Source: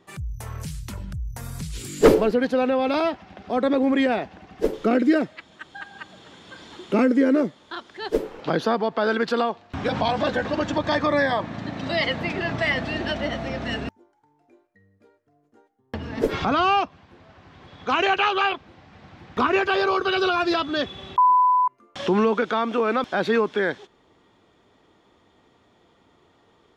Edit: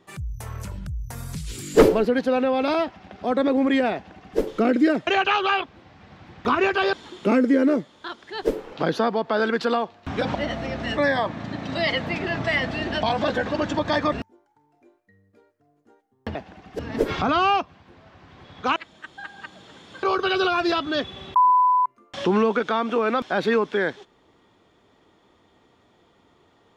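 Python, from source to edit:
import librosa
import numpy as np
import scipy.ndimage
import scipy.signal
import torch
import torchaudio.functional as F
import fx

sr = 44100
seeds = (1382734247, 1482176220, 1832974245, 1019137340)

y = fx.edit(x, sr, fx.cut(start_s=0.65, length_s=0.26),
    fx.duplicate(start_s=4.2, length_s=0.44, to_s=16.02),
    fx.swap(start_s=5.33, length_s=1.27, other_s=17.99, other_length_s=1.86),
    fx.swap(start_s=10.02, length_s=1.09, other_s=13.17, other_length_s=0.62), tone=tone)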